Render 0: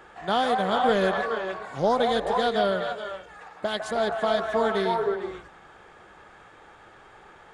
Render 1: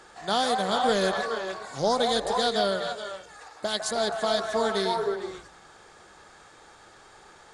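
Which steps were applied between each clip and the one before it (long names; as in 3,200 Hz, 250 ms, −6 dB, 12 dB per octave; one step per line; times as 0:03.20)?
flat-topped bell 6,500 Hz +13 dB
mains-hum notches 60/120/180 Hz
level −2 dB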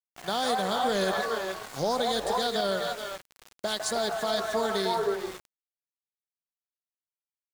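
brickwall limiter −17.5 dBFS, peak gain reduction 7 dB
centre clipping without the shift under −38 dBFS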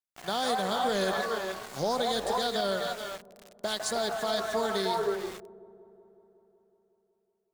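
delay with a low-pass on its return 185 ms, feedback 72%, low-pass 540 Hz, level −18 dB
level −1.5 dB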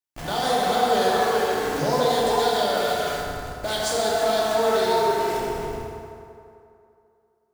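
in parallel at −4 dB: comparator with hysteresis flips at −47 dBFS
on the sum: feedback delay network reverb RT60 2.6 s, low-frequency decay 0.75×, high-frequency decay 0.6×, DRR −5 dB
level −1.5 dB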